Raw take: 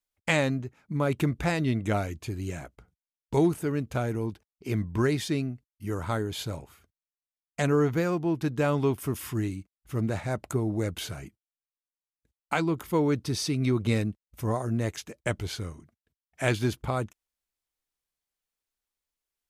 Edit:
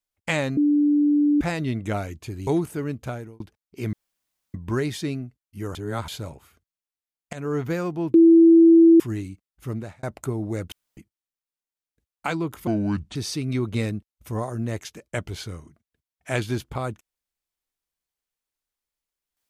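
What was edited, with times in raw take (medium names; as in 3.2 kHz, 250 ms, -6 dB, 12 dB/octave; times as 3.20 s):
0.57–1.41 s: bleep 293 Hz -15.5 dBFS
2.47–3.35 s: delete
3.89–4.28 s: fade out
4.81 s: insert room tone 0.61 s
6.02–6.35 s: reverse
7.60–7.91 s: fade in, from -15 dB
8.41–9.27 s: bleep 331 Hz -9 dBFS
9.94–10.30 s: fade out
10.99–11.24 s: room tone
12.94–13.28 s: speed 70%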